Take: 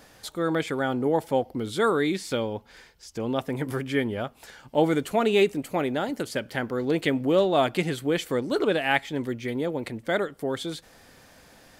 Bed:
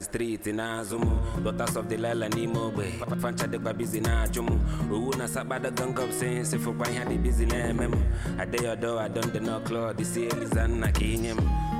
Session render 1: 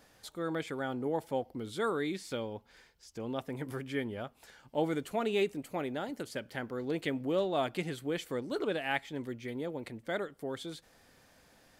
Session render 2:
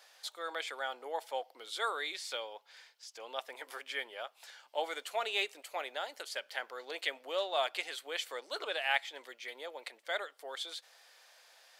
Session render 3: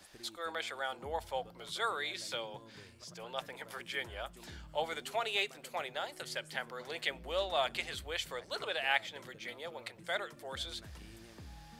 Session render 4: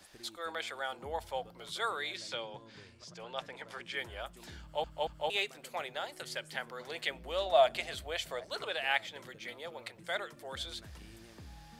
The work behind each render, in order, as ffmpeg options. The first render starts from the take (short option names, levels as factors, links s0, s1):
-af "volume=0.335"
-af "highpass=f=580:w=0.5412,highpass=f=580:w=1.3066,equalizer=f=3900:t=o:w=1.7:g=7"
-filter_complex "[1:a]volume=0.0501[s0];[0:a][s0]amix=inputs=2:normalize=0"
-filter_complex "[0:a]asettb=1/sr,asplit=3[s0][s1][s2];[s0]atrim=end=2.174[s3];[s1]atrim=start=2.17:end=3.97,asetpts=PTS-STARTPTS,afade=t=in:d=0.004:c=qsin,afade=t=out:st=1.796:d=0.004:c=qsin,lowpass=7000[s4];[s2]atrim=start=3.966[s5];[s3][s4]acrossfade=d=0.004:c1=hsin:c2=qsin[s6];[s6][s5]acrossfade=d=0.004:c1=qsin:c2=hsin,asettb=1/sr,asplit=3[s7][s8][s9];[s7]atrim=end=7.464[s10];[s8]atrim=start=7.46:end=8.47,asetpts=PTS-STARTPTS,afade=t=in:d=0.004:c=qsin,afade=t=out:st=1.006:d=0.004:c=qsin,equalizer=f=650:w=4.5:g=12[s11];[s9]atrim=start=8.466[s12];[s10][s11]acrossfade=d=0.004:c1=hsin:c2=qsin[s13];[s13][s12]acrossfade=d=0.004:c1=qsin:c2=hsin,asplit=4[s14][s15][s16][s17];[s14]atrim=end=4.842[s18];[s15]atrim=start=4.608:end=4.842[s19];[s16]atrim=start=4.608:end=4.842[s20];[s17]atrim=start=5.298[s21];[s18][s19]acrossfade=d=0.004:c1=hsin:c2=hsin[s22];[s22][s20]acrossfade=d=0.004:c1=hsin:c2=hsin[s23];[s23][s21]acrossfade=d=0.004:c1=hsin:c2=hsin"